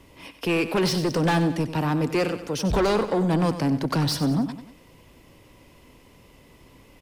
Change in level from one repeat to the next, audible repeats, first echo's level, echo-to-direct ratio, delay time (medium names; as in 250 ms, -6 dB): -6.5 dB, 3, -12.0 dB, -11.0 dB, 94 ms